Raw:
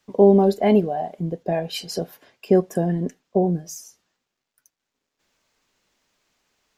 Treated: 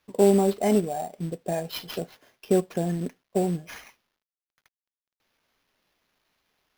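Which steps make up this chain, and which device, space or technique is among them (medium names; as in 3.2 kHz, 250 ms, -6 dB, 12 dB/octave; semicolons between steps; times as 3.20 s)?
early companding sampler (sample-rate reducer 8.2 kHz, jitter 0%; companded quantiser 6-bit); trim -5 dB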